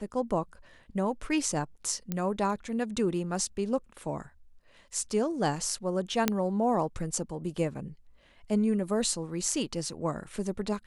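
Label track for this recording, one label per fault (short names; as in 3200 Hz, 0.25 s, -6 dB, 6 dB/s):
2.120000	2.120000	pop -17 dBFS
6.280000	6.280000	pop -8 dBFS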